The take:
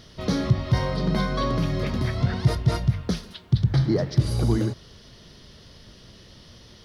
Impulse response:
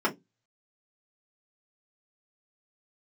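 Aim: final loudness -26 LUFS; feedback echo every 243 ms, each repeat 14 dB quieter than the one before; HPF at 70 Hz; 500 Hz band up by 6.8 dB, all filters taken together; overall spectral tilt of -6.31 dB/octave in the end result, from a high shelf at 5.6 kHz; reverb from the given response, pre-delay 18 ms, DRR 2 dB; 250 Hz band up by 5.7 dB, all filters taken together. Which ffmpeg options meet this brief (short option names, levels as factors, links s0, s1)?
-filter_complex "[0:a]highpass=70,equalizer=f=250:t=o:g=6.5,equalizer=f=500:t=o:g=6.5,highshelf=f=5600:g=3.5,aecho=1:1:243|486:0.2|0.0399,asplit=2[s0][s1];[1:a]atrim=start_sample=2205,adelay=18[s2];[s1][s2]afir=irnorm=-1:irlink=0,volume=0.2[s3];[s0][s3]amix=inputs=2:normalize=0,volume=0.422"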